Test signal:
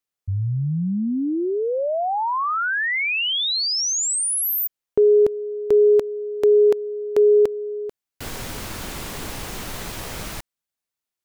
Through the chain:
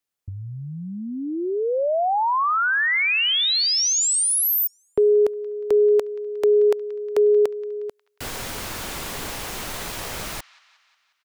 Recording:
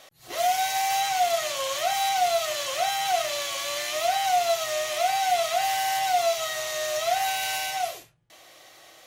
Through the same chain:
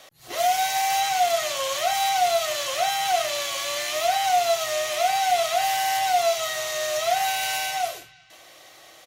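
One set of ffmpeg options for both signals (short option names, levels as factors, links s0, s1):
-filter_complex "[0:a]acrossover=split=400|1000|5700[s0][s1][s2][s3];[s0]acompressor=threshold=0.0178:ratio=6:release=945[s4];[s2]aecho=1:1:180|360|540|720|900:0.126|0.0743|0.0438|0.0259|0.0153[s5];[s4][s1][s5][s3]amix=inputs=4:normalize=0,volume=1.26"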